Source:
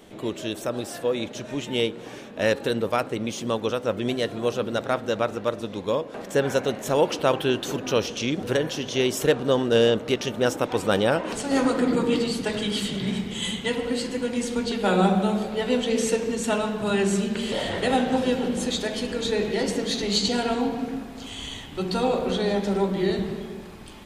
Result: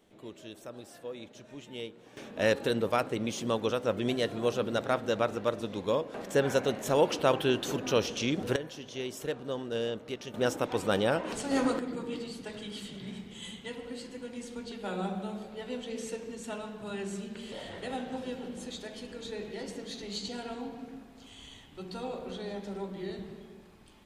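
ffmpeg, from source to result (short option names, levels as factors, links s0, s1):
-af "asetnsamples=n=441:p=0,asendcmd='2.17 volume volume -4dB;8.56 volume volume -14dB;10.34 volume volume -6dB;11.79 volume volume -14.5dB',volume=0.158"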